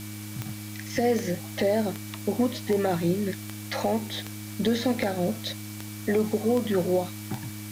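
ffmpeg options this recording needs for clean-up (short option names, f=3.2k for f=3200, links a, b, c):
-af "adeclick=t=4,bandreject=f=104.7:t=h:w=4,bandreject=f=209.4:t=h:w=4,bandreject=f=314.1:t=h:w=4,bandreject=f=2.3k:w=30,afftdn=nr=30:nf=-38"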